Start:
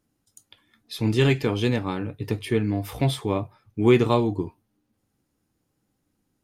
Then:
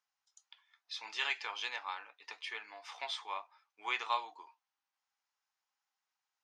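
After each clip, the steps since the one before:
elliptic band-pass filter 880–6,200 Hz, stop band 80 dB
level −5.5 dB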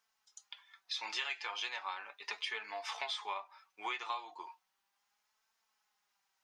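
downward compressor 6 to 1, threshold −44 dBFS, peak gain reduction 15.5 dB
flanger 0.36 Hz, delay 4.4 ms, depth 1.4 ms, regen +34%
level +12 dB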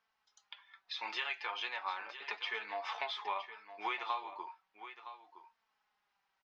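high-frequency loss of the air 230 metres
single-tap delay 966 ms −12.5 dB
level +3.5 dB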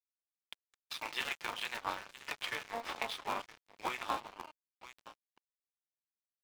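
sub-harmonics by changed cycles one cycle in 3, muted
dead-zone distortion −48 dBFS
level +4 dB

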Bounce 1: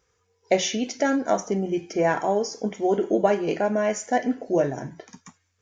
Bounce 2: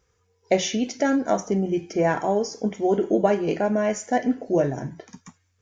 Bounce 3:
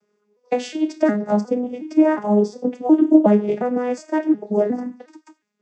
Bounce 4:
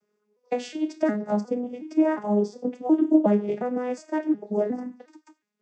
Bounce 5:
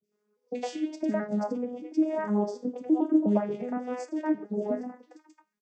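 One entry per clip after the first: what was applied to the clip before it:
low-shelf EQ 240 Hz +7 dB; level −1 dB
vocoder with an arpeggio as carrier minor triad, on G#3, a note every 361 ms; level +5.5 dB
pitch vibrato 1.1 Hz 14 cents; level −6 dB
three-band delay without the direct sound lows, highs, mids 30/110 ms, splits 500/2,500 Hz; level −2.5 dB

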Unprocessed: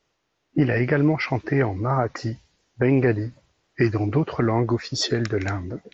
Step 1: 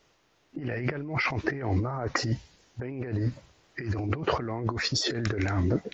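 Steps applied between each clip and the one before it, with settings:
compressor whose output falls as the input rises −30 dBFS, ratio −1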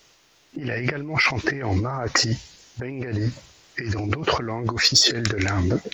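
high-shelf EQ 2,500 Hz +12 dB
in parallel at −5 dB: soft clipping −13.5 dBFS, distortion −18 dB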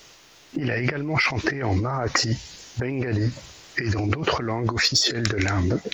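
downward compressor 2.5 to 1, threshold −30 dBFS, peak gain reduction 12 dB
level +7 dB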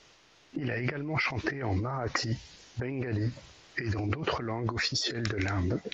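high-frequency loss of the air 82 metres
level −7 dB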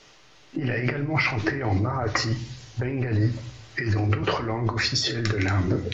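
convolution reverb RT60 0.55 s, pre-delay 5 ms, DRR 5 dB
level +4.5 dB

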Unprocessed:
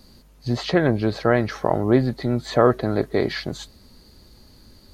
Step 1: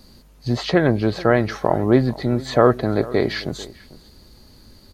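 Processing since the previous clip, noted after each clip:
slap from a distant wall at 76 metres, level −19 dB
level +2 dB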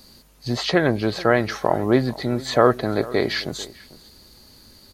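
spectral tilt +1.5 dB per octave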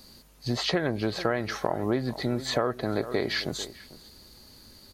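downward compressor 6 to 1, threshold −20 dBFS, peak gain reduction 10.5 dB
level −2.5 dB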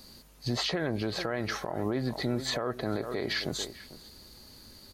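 brickwall limiter −21 dBFS, peak gain reduction 10.5 dB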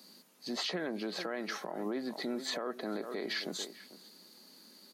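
Chebyshev high-pass filter 180 Hz, order 5
level −4.5 dB

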